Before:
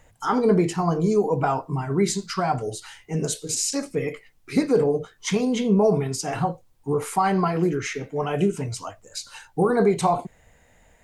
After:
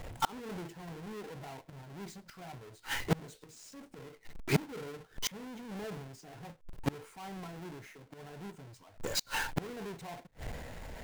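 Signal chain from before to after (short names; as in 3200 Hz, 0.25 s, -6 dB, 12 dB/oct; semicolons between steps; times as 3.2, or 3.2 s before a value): half-waves squared off; transient shaper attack -6 dB, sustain +4 dB; high shelf 3300 Hz -5.5 dB; notch 1200 Hz, Q 14; flipped gate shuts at -25 dBFS, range -33 dB; gain +7 dB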